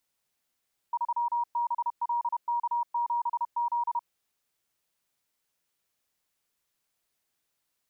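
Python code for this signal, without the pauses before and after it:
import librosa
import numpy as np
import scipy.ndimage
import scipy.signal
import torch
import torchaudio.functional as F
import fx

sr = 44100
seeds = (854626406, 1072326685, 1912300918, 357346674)

y = fx.morse(sr, text='3BLK7Z', wpm=31, hz=950.0, level_db=-25.0)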